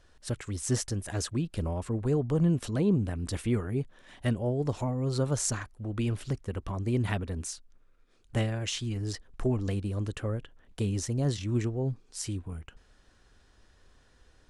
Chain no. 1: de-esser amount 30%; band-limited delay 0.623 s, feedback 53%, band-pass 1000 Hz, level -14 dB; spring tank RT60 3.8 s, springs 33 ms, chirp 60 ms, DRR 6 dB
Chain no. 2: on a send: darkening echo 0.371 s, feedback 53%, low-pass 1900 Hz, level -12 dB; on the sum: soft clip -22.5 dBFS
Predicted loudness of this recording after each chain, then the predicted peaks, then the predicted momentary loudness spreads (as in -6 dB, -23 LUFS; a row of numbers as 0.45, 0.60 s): -30.5, -33.0 LUFS; -13.0, -22.5 dBFS; 10, 9 LU